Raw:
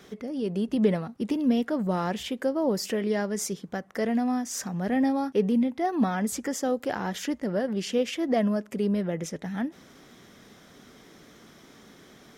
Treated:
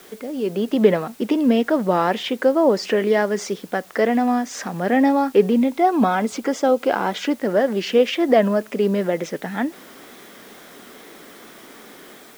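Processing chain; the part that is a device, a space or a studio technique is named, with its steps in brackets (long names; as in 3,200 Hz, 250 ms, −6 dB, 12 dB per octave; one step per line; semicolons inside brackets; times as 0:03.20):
dictaphone (band-pass filter 300–3,600 Hz; automatic gain control gain up to 4.5 dB; tape wow and flutter; white noise bed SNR 29 dB)
0:05.72–0:07.36: notch filter 1,800 Hz, Q 6.8
level +6.5 dB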